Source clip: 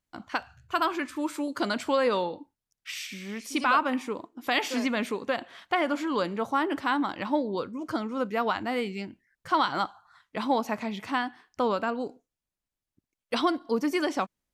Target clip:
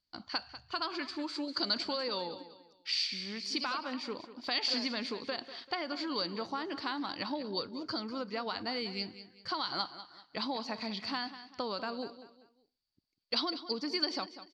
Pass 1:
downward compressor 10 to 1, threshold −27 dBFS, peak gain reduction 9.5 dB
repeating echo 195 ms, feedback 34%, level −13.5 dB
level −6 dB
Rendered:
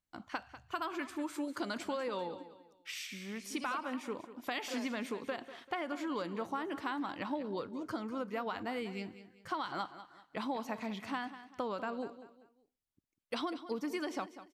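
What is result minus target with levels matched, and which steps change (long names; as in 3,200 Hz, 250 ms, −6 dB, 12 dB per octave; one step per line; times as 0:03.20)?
4,000 Hz band −9.5 dB
add after downward compressor: low-pass with resonance 4,600 Hz, resonance Q 15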